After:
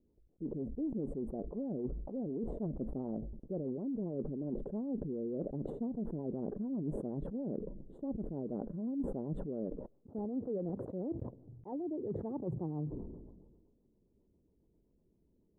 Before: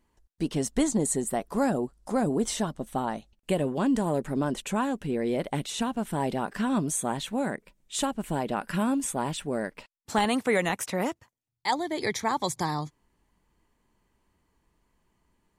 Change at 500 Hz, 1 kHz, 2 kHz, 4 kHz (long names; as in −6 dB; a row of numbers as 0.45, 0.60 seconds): −10.0 dB, −24.0 dB, below −40 dB, below −40 dB